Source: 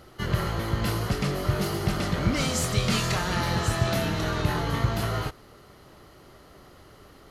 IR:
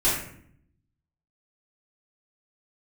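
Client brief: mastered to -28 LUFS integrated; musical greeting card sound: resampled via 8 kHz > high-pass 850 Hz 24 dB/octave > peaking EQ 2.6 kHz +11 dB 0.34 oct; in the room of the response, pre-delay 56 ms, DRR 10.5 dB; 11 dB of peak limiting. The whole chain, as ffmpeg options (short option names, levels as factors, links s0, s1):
-filter_complex "[0:a]alimiter=limit=0.075:level=0:latency=1,asplit=2[s0][s1];[1:a]atrim=start_sample=2205,adelay=56[s2];[s1][s2]afir=irnorm=-1:irlink=0,volume=0.0631[s3];[s0][s3]amix=inputs=2:normalize=0,aresample=8000,aresample=44100,highpass=f=850:w=0.5412,highpass=f=850:w=1.3066,equalizer=f=2600:t=o:w=0.34:g=11,volume=2"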